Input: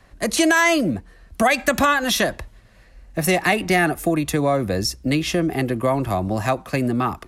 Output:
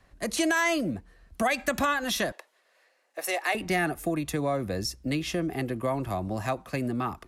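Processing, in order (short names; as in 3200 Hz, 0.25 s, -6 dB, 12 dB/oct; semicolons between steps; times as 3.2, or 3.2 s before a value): 2.32–3.55 HPF 440 Hz 24 dB/oct; gain -8.5 dB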